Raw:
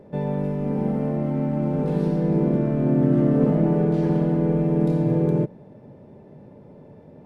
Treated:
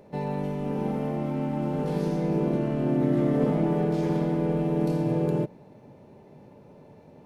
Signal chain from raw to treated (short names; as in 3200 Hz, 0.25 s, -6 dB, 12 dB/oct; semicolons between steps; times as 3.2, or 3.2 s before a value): formant shift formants +2 st; high shelf 2300 Hz +10.5 dB; gain -5 dB